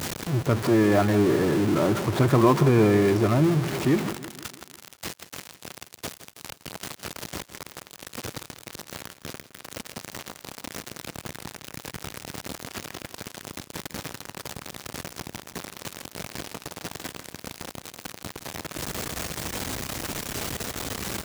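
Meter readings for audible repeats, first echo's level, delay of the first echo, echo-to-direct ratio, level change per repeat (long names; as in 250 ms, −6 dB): 4, −14.5 dB, 163 ms, −13.0 dB, −5.5 dB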